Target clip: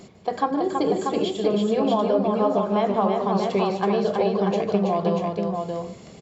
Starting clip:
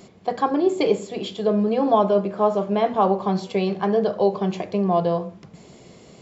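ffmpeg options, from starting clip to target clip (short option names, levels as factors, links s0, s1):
-filter_complex "[0:a]asettb=1/sr,asplit=3[s0][s1][s2];[s0]atrim=end=0.514[s3];[s1]atrim=start=0.51:end=0.99,asetpts=PTS-STARTPTS,afade=t=in:d=0.004:c=qsin,afade=t=out:st=0.476:d=0.004:c=qsin,equalizer=f=160:t=o:w=0.67:g=7,equalizer=f=400:t=o:w=0.67:g=-4,equalizer=f=2500:t=o:w=0.67:g=-12,equalizer=f=6300:t=o:w=0.67:g=-5[s4];[s2]atrim=start=0.986[s5];[s3][s4]acrossfade=d=0.004:c1=hsin:c2=qsin[s6];[s6][s5]acrossfade=d=0.004:c1=qsin:c2=hsin,acompressor=threshold=0.112:ratio=6,aphaser=in_gain=1:out_gain=1:delay=4.8:decay=0.21:speed=0.85:type=triangular,aecho=1:1:151|327|638:0.251|0.596|0.596"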